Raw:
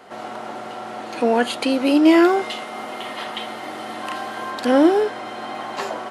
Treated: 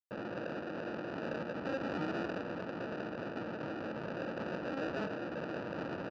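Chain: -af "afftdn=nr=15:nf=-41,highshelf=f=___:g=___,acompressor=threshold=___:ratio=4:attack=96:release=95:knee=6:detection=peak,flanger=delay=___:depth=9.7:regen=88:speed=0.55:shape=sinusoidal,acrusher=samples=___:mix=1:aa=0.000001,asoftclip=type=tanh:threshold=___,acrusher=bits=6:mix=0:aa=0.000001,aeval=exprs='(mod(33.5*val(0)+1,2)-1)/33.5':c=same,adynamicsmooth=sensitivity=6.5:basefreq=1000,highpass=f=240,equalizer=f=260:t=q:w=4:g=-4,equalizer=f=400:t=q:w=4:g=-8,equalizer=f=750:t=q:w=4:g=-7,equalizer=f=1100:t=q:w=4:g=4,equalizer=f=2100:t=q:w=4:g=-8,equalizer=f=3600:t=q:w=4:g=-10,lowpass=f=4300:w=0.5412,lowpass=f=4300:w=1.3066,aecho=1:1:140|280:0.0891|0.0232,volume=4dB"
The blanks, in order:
3100, -11, -32dB, 7.8, 41, -21.5dB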